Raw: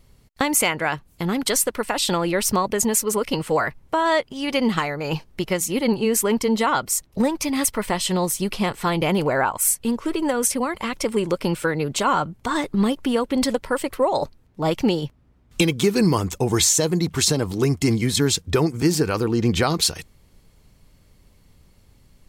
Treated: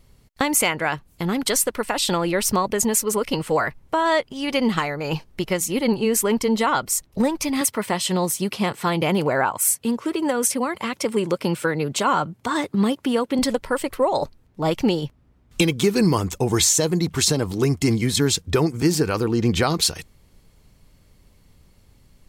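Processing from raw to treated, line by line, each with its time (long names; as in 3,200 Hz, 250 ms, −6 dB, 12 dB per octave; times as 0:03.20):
0:07.61–0:13.39: high-pass filter 91 Hz 24 dB per octave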